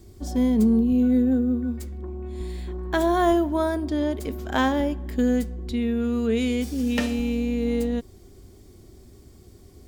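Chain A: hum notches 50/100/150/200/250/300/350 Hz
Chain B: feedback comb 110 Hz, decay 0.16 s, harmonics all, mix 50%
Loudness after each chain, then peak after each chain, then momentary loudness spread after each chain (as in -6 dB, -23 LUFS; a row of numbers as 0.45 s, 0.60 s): -25.0 LUFS, -27.0 LUFS; -10.0 dBFS, -12.5 dBFS; 13 LU, 15 LU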